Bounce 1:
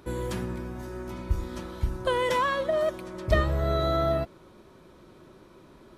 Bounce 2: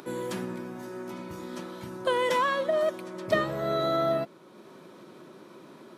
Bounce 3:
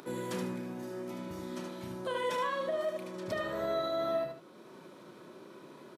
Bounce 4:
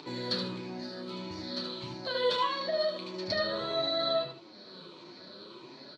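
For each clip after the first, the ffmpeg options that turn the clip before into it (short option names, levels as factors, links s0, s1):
-af "highpass=f=160:w=0.5412,highpass=f=160:w=1.3066,acompressor=mode=upward:threshold=0.00794:ratio=2.5"
-filter_complex "[0:a]asplit=2[s0][s1];[s1]aecho=0:1:32|76:0.355|0.422[s2];[s0][s2]amix=inputs=2:normalize=0,alimiter=limit=0.0841:level=0:latency=1:release=173,asplit=2[s3][s4];[s4]aecho=0:1:74:0.376[s5];[s3][s5]amix=inputs=2:normalize=0,volume=0.631"
-af "afftfilt=real='re*pow(10,7/40*sin(2*PI*(0.69*log(max(b,1)*sr/1024/100)/log(2)-(-1.6)*(pts-256)/sr)))':imag='im*pow(10,7/40*sin(2*PI*(0.69*log(max(b,1)*sr/1024/100)/log(2)-(-1.6)*(pts-256)/sr)))':win_size=1024:overlap=0.75,lowpass=f=4300:t=q:w=15,flanger=delay=6.5:depth=5.6:regen=37:speed=0.5:shape=triangular,volume=1.58"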